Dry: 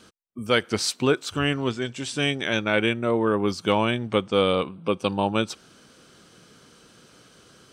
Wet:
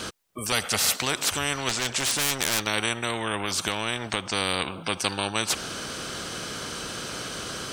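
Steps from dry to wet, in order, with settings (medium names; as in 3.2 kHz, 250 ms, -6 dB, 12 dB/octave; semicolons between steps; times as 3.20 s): 0.52–0.96 s: comb 1.5 ms, depth 98%; 1.69–2.67 s: hard clipper -25.5 dBFS, distortion -17 dB; 3.41–4.30 s: compression, threshold -25 dBFS, peak gain reduction 9 dB; spectrum-flattening compressor 4:1; trim -2.5 dB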